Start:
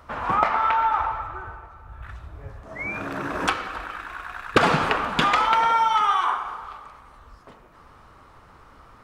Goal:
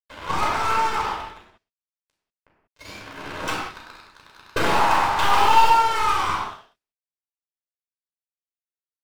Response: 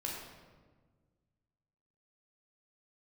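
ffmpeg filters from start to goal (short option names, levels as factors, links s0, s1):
-filter_complex "[0:a]acontrast=45,aeval=exprs='sgn(val(0))*max(abs(val(0))-0.0251,0)':c=same,asettb=1/sr,asplit=3[s0][s1][s2];[s0]atrim=end=4.714[s3];[s1]atrim=start=4.71:end=5.7,asetpts=PTS-STARTPTS,afade=t=in:d=0.004:c=qsin,afade=t=out:st=0.986:d=0.004:c=qsin,highpass=f=820:t=q:w=4.9[s4];[s2]atrim=start=5.696[s5];[s3][s4]acrossfade=d=0.004:c1=hsin:c2=qsin[s6];[s6][s5]acrossfade=d=0.004:c1=qsin:c2=hsin,aeval=exprs='sgn(val(0))*max(abs(val(0))-0.0562,0)':c=same,aeval=exprs='(tanh(6.31*val(0)+0.45)-tanh(0.45))/6.31':c=same[s7];[1:a]atrim=start_sample=2205,afade=t=out:st=0.25:d=0.01,atrim=end_sample=11466[s8];[s7][s8]afir=irnorm=-1:irlink=0"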